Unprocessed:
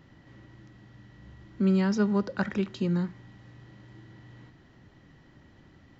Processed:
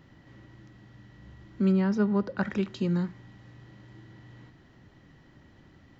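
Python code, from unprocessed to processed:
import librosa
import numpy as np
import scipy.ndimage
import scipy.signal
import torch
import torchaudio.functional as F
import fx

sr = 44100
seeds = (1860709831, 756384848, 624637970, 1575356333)

y = fx.lowpass(x, sr, hz=fx.line((1.71, 1600.0), (2.45, 3000.0)), slope=6, at=(1.71, 2.45), fade=0.02)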